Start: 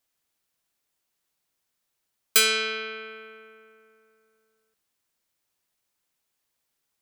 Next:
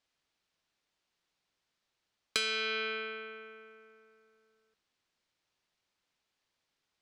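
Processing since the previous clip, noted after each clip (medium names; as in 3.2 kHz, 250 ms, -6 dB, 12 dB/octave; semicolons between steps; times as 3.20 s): Chebyshev low-pass 4.4 kHz, order 2; compression 10:1, threshold -30 dBFS, peak gain reduction 12.5 dB; trim +1 dB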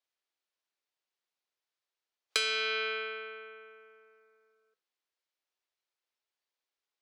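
high-pass 330 Hz 24 dB/octave; spectral noise reduction 11 dB; trim +2 dB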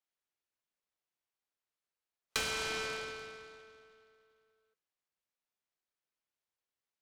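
delay time shaken by noise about 1.8 kHz, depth 0.049 ms; trim -4.5 dB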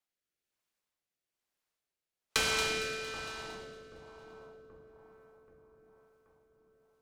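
two-band feedback delay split 1.1 kHz, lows 780 ms, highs 229 ms, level -8 dB; rotary cabinet horn 1.1 Hz; trim +5.5 dB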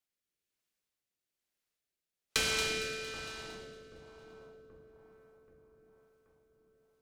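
peaking EQ 950 Hz -6.5 dB 1.2 oct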